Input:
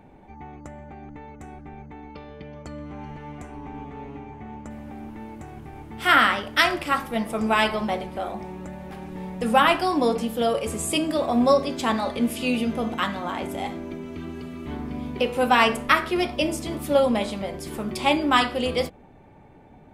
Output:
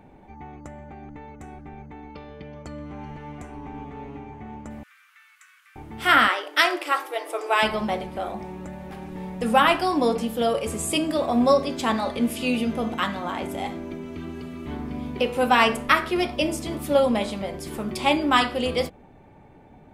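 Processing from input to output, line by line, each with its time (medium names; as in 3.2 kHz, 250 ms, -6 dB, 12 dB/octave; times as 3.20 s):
4.83–5.76 s: steep high-pass 1.2 kHz 72 dB/octave
6.28–7.63 s: brick-wall FIR high-pass 290 Hz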